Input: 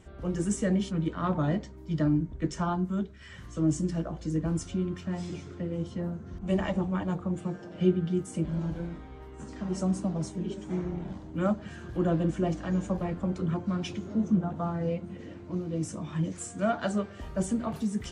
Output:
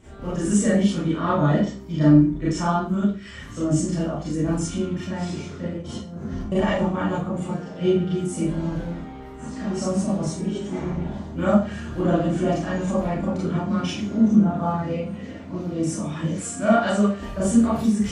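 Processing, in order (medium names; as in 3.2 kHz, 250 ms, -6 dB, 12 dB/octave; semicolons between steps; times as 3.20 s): 5.73–6.52 s: compressor with a negative ratio -38 dBFS, ratio -0.5; Schroeder reverb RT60 0.38 s, combs from 27 ms, DRR -8.5 dB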